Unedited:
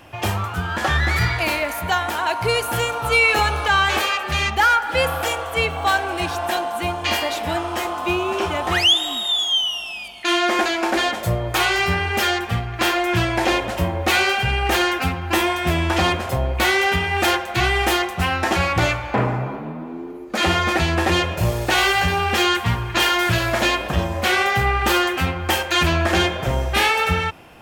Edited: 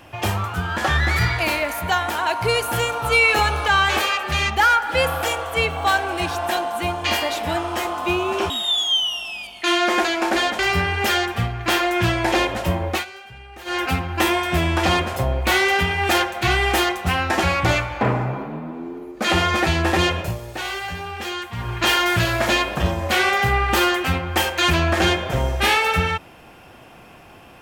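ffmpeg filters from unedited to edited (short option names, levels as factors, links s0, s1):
-filter_complex "[0:a]asplit=7[s0][s1][s2][s3][s4][s5][s6];[s0]atrim=end=8.502[s7];[s1]atrim=start=9.108:end=11.202[s8];[s2]atrim=start=11.718:end=14.18,asetpts=PTS-STARTPTS,afade=t=out:st=2.232:d=0.23:c=qsin:silence=0.0944061[s9];[s3]atrim=start=14.18:end=14.78,asetpts=PTS-STARTPTS,volume=0.0944[s10];[s4]atrim=start=14.78:end=21.48,asetpts=PTS-STARTPTS,afade=t=in:d=0.23:c=qsin:silence=0.0944061,afade=t=out:st=6.55:d=0.15:silence=0.298538[s11];[s5]atrim=start=21.48:end=22.7,asetpts=PTS-STARTPTS,volume=0.299[s12];[s6]atrim=start=22.7,asetpts=PTS-STARTPTS,afade=t=in:d=0.15:silence=0.298538[s13];[s7][s8]acrossfade=d=0.004:c1=hsin:c2=hsin[s14];[s9][s10][s11][s12][s13]concat=n=5:v=0:a=1[s15];[s14][s15]acrossfade=d=0.004:c1=hsin:c2=hsin"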